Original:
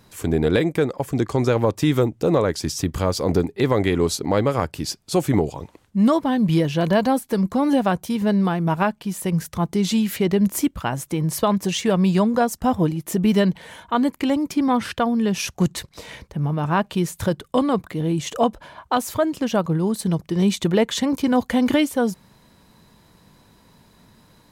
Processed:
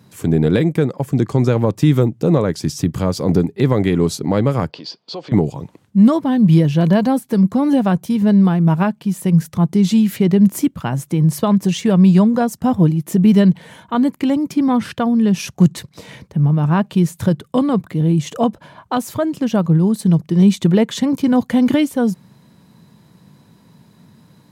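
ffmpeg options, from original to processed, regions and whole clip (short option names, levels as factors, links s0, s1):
-filter_complex "[0:a]asettb=1/sr,asplit=3[s0][s1][s2];[s0]atrim=end=4.704[s3];[s1]atrim=start=4.7:end=5.32,asetpts=PTS-STARTPTS,afade=t=in:d=0.004:c=qsin,afade=t=out:st=0.616:d=0.004:c=qsin,acompressor=threshold=0.0355:ratio=4:attack=3.2:release=140:knee=1:detection=peak,highpass=360,equalizer=f=480:t=q:w=4:g=8,equalizer=f=690:t=q:w=4:g=4,equalizer=f=1000:t=q:w=4:g=8,equalizer=f=3200:t=q:w=4:g=6,equalizer=f=4600:t=q:w=4:g=10,lowpass=f=4800:w=0.5412,lowpass=f=4800:w=1.3066[s4];[s2]atrim=start=5.316[s5];[s3][s4]acrossfade=d=0.004:c1=hsin:c2=qsin[s6];[s6][s5]acrossfade=d=0.004:c1=qsin:c2=hsin,highpass=100,equalizer=f=150:w=0.76:g=11,volume=0.891"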